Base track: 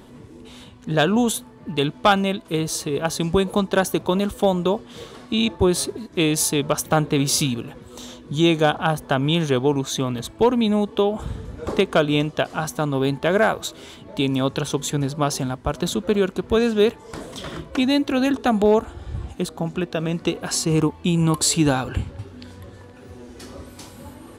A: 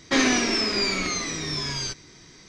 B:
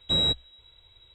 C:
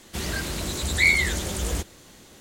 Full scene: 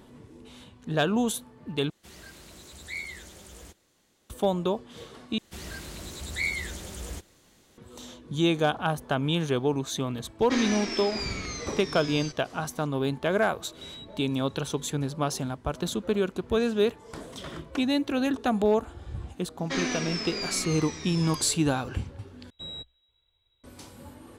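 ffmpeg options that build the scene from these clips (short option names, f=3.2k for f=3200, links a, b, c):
-filter_complex "[3:a]asplit=2[a][b];[1:a]asplit=2[c][d];[2:a]asplit=2[e][f];[0:a]volume=-6.5dB[g];[a]lowshelf=f=160:g=-5.5[h];[e]acompressor=threshold=-40dB:ratio=6:attack=3.2:release=140:knee=1:detection=peak[i];[g]asplit=4[j][k][l][m];[j]atrim=end=1.904[n];[h]atrim=end=2.4,asetpts=PTS-STARTPTS,volume=-17.5dB[o];[k]atrim=start=4.296:end=5.384[p];[b]atrim=end=2.4,asetpts=PTS-STARTPTS,volume=-10.5dB[q];[l]atrim=start=7.776:end=22.504[r];[f]atrim=end=1.14,asetpts=PTS-STARTPTS,volume=-16dB[s];[m]atrim=start=23.636[t];[c]atrim=end=2.48,asetpts=PTS-STARTPTS,volume=-9.5dB,afade=t=in:d=0.004:c=hsin,afade=t=out:st=2.476:d=0.004:c=hsin,adelay=10390[u];[i]atrim=end=1.14,asetpts=PTS-STARTPTS,volume=-3.5dB,afade=t=in:d=0.004:c=hsin,afade=t=out:st=1.136:d=0.004:c=hsin,adelay=13720[v];[d]atrim=end=2.48,asetpts=PTS-STARTPTS,volume=-9.5dB,afade=t=in:d=0.004:c=hsin,afade=t=out:st=2.476:d=0.004:c=hsin,adelay=19590[w];[n][o]acrossfade=d=0.004:c1=hsin:c2=hsin[x];[x][p]acrossfade=d=0.004:c1=hsin:c2=hsin[y];[y][q]acrossfade=d=0.004:c1=hsin:c2=hsin[z];[z][r]acrossfade=d=0.004:c1=hsin:c2=hsin[aa];[aa][s]acrossfade=d=0.004:c1=hsin:c2=hsin[ab];[ab][t]acrossfade=d=0.004:c1=hsin:c2=hsin[ac];[ac][u][v][w]amix=inputs=4:normalize=0"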